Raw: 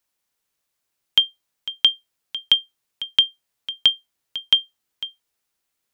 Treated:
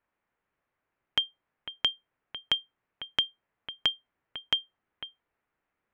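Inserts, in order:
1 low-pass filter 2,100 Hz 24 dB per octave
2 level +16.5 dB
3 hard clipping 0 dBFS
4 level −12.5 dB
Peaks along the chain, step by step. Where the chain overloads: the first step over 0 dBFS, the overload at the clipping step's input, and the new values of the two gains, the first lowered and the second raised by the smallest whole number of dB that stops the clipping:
−12.0, +4.5, 0.0, −12.5 dBFS
step 2, 4.5 dB
step 2 +11.5 dB, step 4 −7.5 dB

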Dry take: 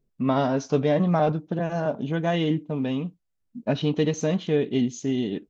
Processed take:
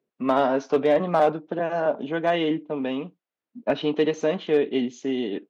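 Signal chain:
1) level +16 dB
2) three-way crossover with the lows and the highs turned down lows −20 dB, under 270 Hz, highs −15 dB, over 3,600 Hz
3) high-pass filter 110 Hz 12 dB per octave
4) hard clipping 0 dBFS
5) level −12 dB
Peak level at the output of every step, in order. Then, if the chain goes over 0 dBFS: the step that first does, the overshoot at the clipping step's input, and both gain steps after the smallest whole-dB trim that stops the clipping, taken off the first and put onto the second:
+6.5, +4.5, +4.0, 0.0, −12.0 dBFS
step 1, 4.0 dB
step 1 +12 dB, step 5 −8 dB

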